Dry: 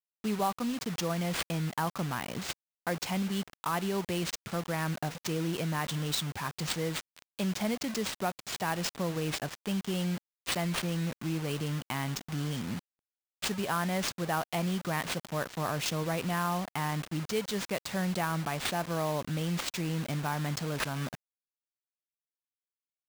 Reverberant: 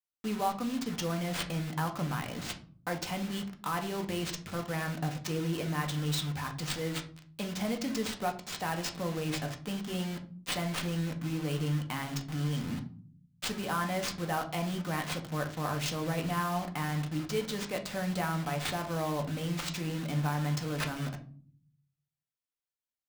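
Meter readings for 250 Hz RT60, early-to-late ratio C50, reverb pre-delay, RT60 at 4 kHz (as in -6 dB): 0.90 s, 12.5 dB, 4 ms, 0.30 s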